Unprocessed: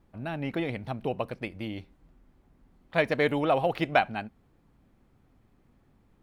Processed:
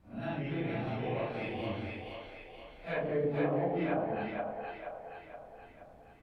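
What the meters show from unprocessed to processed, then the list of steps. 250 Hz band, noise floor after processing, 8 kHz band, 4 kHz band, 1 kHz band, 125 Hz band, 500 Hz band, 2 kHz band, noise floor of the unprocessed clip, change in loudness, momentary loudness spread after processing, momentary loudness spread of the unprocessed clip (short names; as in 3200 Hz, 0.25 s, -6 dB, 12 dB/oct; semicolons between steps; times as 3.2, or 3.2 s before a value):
-3.0 dB, -56 dBFS, n/a, -9.5 dB, -7.5 dB, -1.5 dB, -4.0 dB, -9.0 dB, -65 dBFS, -6.5 dB, 19 LU, 13 LU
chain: phase scrambler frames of 0.2 s; treble ducked by the level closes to 500 Hz, closed at -20.5 dBFS; compressor 1.5:1, threshold -43 dBFS, peak gain reduction 7.5 dB; doubler 34 ms -7.5 dB; split-band echo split 440 Hz, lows 0.126 s, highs 0.473 s, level -3 dB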